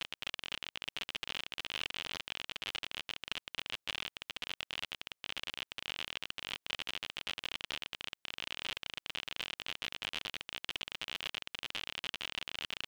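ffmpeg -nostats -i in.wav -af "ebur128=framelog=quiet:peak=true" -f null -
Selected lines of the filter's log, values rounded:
Integrated loudness:
  I:         -40.1 LUFS
  Threshold: -50.1 LUFS
Loudness range:
  LRA:         0.9 LU
  Threshold: -60.2 LUFS
  LRA low:   -40.6 LUFS
  LRA high:  -39.7 LUFS
True peak:
  Peak:      -15.1 dBFS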